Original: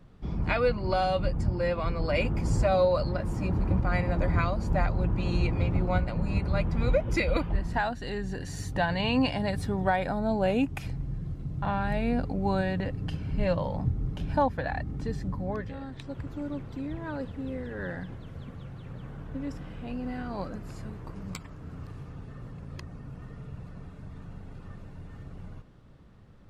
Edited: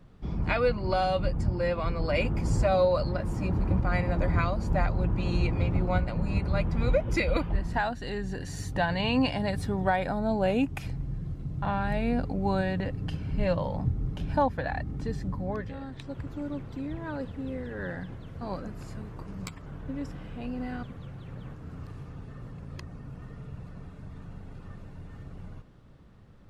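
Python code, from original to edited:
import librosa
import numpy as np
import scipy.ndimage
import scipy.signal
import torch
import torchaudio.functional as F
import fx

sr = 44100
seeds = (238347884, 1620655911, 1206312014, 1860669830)

y = fx.edit(x, sr, fx.swap(start_s=18.41, length_s=0.71, other_s=20.29, other_length_s=1.25), tone=tone)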